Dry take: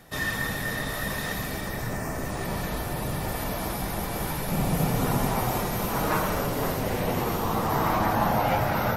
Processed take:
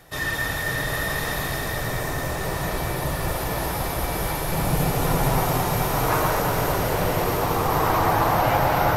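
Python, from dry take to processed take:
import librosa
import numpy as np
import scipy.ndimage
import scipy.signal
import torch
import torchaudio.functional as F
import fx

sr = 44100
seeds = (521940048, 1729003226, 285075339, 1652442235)

p1 = fx.peak_eq(x, sr, hz=220.0, db=-13.5, octaves=0.34)
p2 = p1 + fx.echo_alternate(p1, sr, ms=111, hz=1700.0, feedback_pct=89, wet_db=-4.0, dry=0)
y = p2 * 10.0 ** (2.0 / 20.0)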